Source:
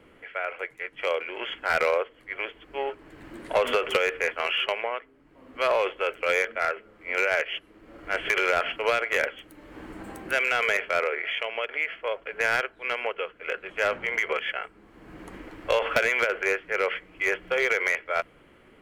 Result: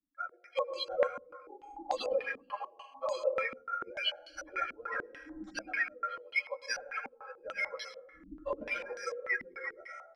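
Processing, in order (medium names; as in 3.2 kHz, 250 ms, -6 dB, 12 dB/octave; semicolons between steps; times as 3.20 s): expander on every frequency bin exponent 3; vibrato 2.3 Hz 6.7 cents; compression 3:1, threshold -35 dBFS, peak gain reduction 10 dB; plain phase-vocoder stretch 0.54×; gain riding within 5 dB 0.5 s; hum notches 60/120/180/240/300/360/420/480 Hz; plate-style reverb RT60 0.99 s, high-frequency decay 0.6×, pre-delay 90 ms, DRR 6.5 dB; careless resampling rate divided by 6×, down none, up hold; comb 3.7 ms, depth 93%; step-sequenced low-pass 6.8 Hz 250–4600 Hz; trim +1.5 dB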